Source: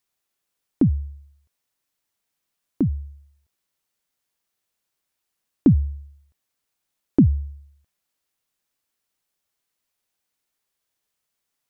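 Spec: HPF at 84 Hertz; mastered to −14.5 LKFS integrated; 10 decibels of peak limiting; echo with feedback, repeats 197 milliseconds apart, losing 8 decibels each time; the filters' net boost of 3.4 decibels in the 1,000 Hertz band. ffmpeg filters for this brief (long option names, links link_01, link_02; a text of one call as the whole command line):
ffmpeg -i in.wav -af "highpass=84,equalizer=frequency=1000:width_type=o:gain=4.5,alimiter=limit=-15dB:level=0:latency=1,aecho=1:1:197|394|591|788|985:0.398|0.159|0.0637|0.0255|0.0102,volume=14dB" out.wav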